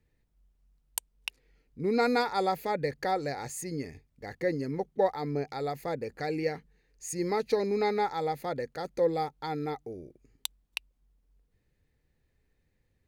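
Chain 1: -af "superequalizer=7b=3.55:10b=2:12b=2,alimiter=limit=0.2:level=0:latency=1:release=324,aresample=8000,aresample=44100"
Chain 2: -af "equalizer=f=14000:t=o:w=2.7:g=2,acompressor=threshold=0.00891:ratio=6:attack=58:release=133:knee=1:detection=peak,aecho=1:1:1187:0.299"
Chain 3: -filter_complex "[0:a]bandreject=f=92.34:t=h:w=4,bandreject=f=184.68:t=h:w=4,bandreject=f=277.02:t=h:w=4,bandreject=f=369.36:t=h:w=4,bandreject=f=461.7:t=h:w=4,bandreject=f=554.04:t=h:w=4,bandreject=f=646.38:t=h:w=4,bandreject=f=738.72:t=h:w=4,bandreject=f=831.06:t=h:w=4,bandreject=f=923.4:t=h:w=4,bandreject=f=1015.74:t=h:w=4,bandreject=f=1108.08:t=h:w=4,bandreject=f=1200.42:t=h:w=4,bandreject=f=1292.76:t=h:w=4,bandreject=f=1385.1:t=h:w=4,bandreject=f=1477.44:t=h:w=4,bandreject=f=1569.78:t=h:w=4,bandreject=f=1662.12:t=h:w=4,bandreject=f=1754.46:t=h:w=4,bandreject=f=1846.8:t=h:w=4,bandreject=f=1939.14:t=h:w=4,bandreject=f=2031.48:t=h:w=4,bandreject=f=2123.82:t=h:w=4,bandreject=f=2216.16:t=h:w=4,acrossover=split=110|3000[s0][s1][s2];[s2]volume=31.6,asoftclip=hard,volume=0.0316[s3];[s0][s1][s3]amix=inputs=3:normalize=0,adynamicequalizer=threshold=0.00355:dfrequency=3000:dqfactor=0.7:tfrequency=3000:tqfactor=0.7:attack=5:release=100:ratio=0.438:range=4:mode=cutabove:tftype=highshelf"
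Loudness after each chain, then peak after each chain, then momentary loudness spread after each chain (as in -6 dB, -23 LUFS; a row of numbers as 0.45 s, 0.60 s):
-26.5 LUFS, -40.0 LUFS, -32.0 LUFS; -14.0 dBFS, -8.5 dBFS, -14.0 dBFS; 16 LU, 11 LU, 16 LU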